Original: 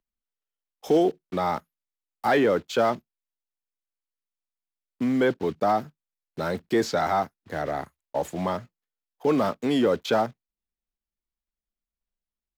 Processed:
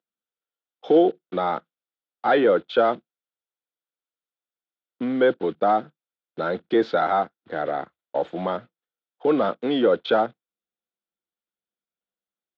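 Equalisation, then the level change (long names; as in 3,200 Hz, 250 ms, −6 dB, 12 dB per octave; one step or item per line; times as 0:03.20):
loudspeaker in its box 140–3,800 Hz, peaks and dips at 200 Hz +3 dB, 330 Hz +7 dB, 500 Hz +9 dB, 730 Hz +6 dB, 1,400 Hz +9 dB, 3,500 Hz +9 dB
−3.5 dB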